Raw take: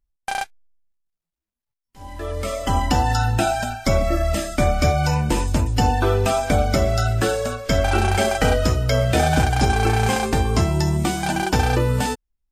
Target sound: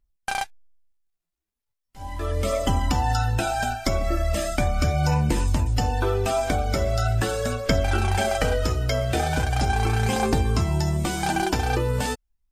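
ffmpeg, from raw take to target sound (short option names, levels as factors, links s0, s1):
-af "acompressor=threshold=0.1:ratio=6,aphaser=in_gain=1:out_gain=1:delay=3:decay=0.34:speed=0.39:type=triangular"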